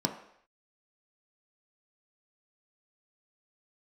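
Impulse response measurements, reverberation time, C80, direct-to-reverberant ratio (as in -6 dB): not exponential, 11.5 dB, 3.0 dB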